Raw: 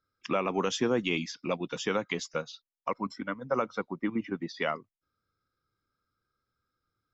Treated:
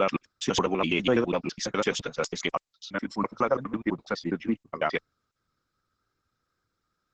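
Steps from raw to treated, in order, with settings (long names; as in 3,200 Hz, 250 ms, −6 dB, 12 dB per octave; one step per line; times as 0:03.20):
slices reordered back to front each 83 ms, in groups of 5
level +4.5 dB
Opus 10 kbit/s 48,000 Hz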